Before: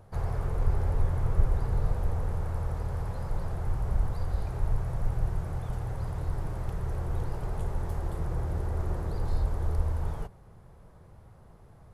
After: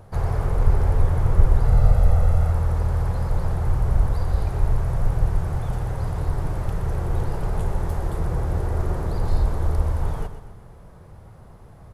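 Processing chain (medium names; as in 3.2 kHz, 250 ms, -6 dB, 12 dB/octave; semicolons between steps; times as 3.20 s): 1.66–2.52 s: comb 1.5 ms, depth 58%; feedback delay 123 ms, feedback 49%, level -11 dB; trim +7.5 dB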